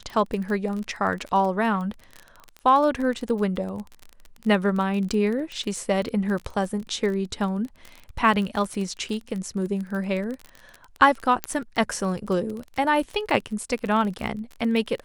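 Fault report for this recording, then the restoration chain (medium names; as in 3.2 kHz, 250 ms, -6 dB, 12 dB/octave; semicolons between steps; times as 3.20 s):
crackle 26 per s -29 dBFS
11.44 s: pop -9 dBFS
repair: de-click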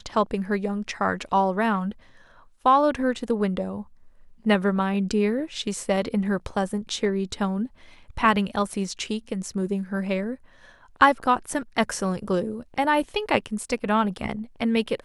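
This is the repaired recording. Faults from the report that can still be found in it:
nothing left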